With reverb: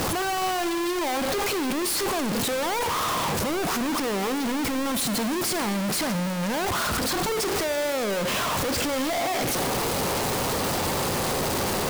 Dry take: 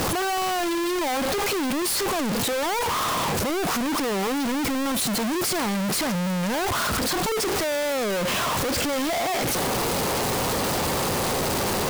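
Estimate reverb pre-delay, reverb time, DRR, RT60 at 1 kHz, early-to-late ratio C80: 12 ms, 2.3 s, 11.5 dB, 2.2 s, 13.5 dB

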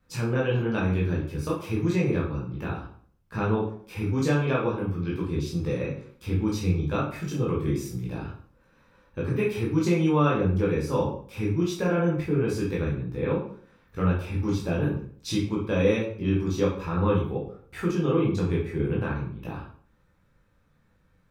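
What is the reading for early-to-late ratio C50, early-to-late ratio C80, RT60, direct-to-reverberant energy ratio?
5.0 dB, 9.5 dB, 0.55 s, -5.0 dB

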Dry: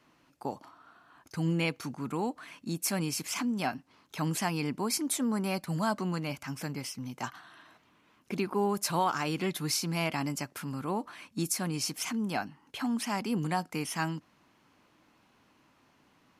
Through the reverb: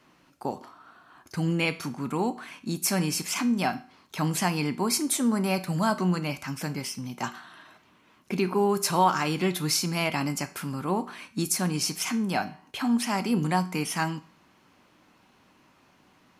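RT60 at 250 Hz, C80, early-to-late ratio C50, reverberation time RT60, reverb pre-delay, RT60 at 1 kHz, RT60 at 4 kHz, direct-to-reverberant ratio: 0.45 s, 20.5 dB, 16.0 dB, 0.45 s, 5 ms, 0.45 s, 0.40 s, 9.5 dB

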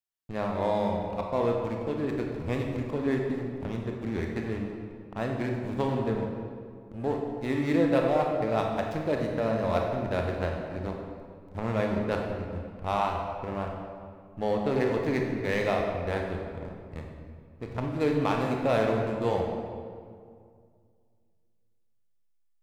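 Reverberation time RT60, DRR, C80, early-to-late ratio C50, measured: 2.1 s, 0.5 dB, 4.0 dB, 2.5 dB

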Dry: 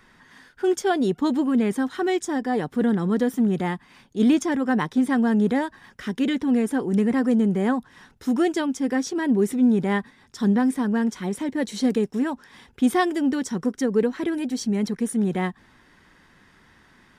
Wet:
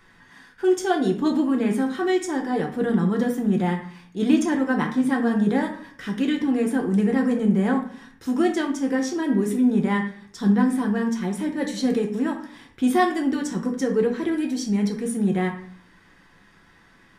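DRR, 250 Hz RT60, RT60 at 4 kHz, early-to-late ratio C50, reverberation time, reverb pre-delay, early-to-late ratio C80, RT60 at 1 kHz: 1.0 dB, 0.70 s, 0.40 s, 8.5 dB, 0.55 s, 6 ms, 13.0 dB, 0.50 s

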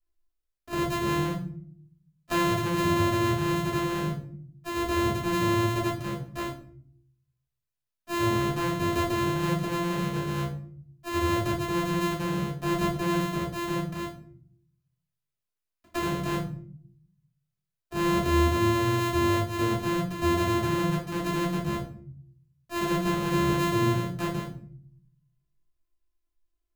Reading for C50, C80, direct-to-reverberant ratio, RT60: 7.0 dB, 11.0 dB, -6.0 dB, 0.55 s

